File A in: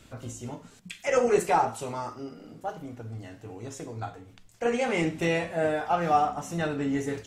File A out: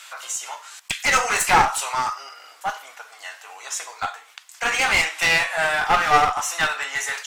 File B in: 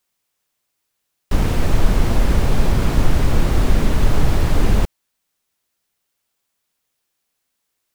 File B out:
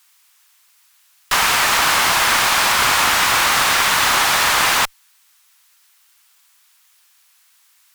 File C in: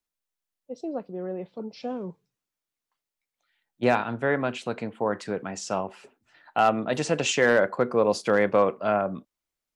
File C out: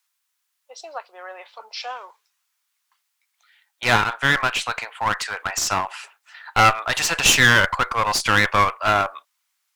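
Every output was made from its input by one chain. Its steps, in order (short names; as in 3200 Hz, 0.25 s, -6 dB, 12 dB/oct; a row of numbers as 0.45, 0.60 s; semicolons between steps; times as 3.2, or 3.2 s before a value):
inverse Chebyshev high-pass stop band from 160 Hz, stop band 80 dB; one-sided clip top -37 dBFS; normalise peaks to -1.5 dBFS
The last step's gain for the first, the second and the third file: +16.5, +19.0, +15.0 dB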